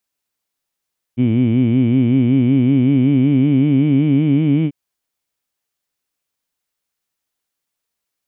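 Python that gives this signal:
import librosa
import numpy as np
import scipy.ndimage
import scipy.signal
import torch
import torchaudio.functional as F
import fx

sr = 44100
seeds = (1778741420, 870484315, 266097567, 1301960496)

y = fx.vowel(sr, seeds[0], length_s=3.54, word='heed', hz=117.0, glide_st=4.5, vibrato_hz=5.3, vibrato_st=1.3)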